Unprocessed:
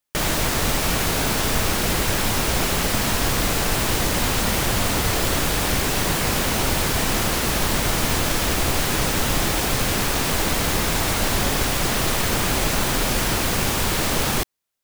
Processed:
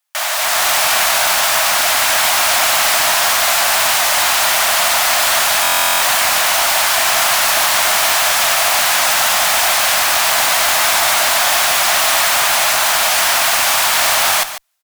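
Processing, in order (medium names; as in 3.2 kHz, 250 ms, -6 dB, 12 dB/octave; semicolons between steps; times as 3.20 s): elliptic high-pass 640 Hz, stop band 40 dB; in parallel at +3 dB: peak limiter -20 dBFS, peak gain reduction 8.5 dB; on the sum: level rider; one-sided clip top -12.5 dBFS; delay 146 ms -12 dB; buffer glitch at 5.62 s, samples 1024, times 16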